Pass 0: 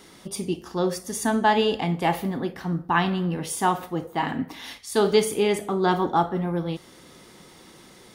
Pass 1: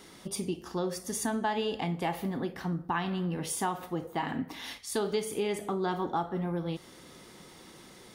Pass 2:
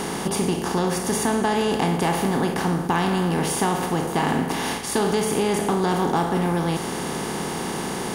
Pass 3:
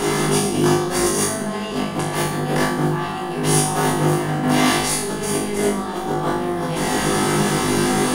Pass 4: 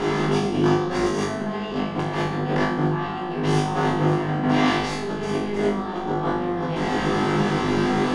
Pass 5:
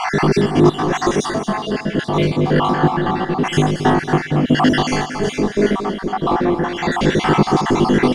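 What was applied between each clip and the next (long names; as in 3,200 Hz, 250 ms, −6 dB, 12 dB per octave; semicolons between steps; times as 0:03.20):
downward compressor 3 to 1, threshold −27 dBFS, peak gain reduction 10.5 dB; level −2.5 dB
compressor on every frequency bin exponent 0.4; low-shelf EQ 130 Hz +8 dB; in parallel at −5.5 dB: hard clipping −20 dBFS, distortion −16 dB
compressor whose output falls as the input rises −25 dBFS, ratio −0.5; flutter between parallel walls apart 3.4 metres, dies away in 0.62 s; on a send at −4 dB: convolution reverb RT60 0.40 s, pre-delay 3 ms
high-frequency loss of the air 170 metres; level −2 dB
time-frequency cells dropped at random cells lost 59%; in parallel at −5 dB: soft clipping −25 dBFS, distortion −8 dB; on the sum: repeating echo 227 ms, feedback 43%, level −10 dB; level +7 dB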